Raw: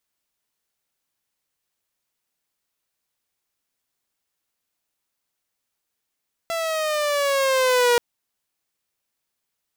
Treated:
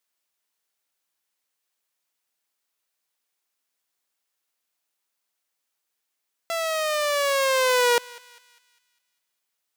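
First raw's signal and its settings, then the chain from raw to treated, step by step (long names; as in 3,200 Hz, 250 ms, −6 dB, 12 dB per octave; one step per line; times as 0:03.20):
pitch glide with a swell saw, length 1.48 s, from 672 Hz, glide −6 semitones, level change +9 dB, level −12 dB
high-pass filter 460 Hz 6 dB per octave
feedback echo with a high-pass in the loop 201 ms, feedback 48%, high-pass 1,000 Hz, level −20 dB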